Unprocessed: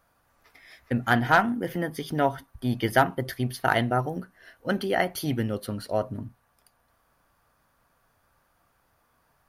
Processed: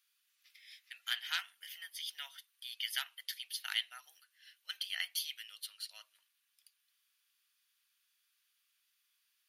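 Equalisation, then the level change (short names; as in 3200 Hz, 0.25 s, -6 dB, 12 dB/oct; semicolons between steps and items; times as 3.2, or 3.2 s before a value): ladder high-pass 2500 Hz, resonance 40%; +4.5 dB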